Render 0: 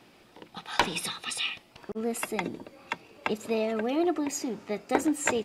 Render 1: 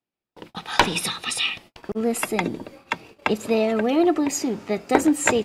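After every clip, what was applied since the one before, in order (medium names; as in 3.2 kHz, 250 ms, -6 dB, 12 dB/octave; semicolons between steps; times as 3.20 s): gate -50 dBFS, range -41 dB; bass shelf 150 Hz +4.5 dB; trim +7 dB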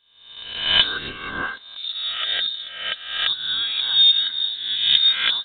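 reverse spectral sustain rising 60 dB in 0.79 s; small resonant body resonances 350/590/980/2400 Hz, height 13 dB, ringing for 45 ms; frequency inversion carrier 4 kHz; trim -8.5 dB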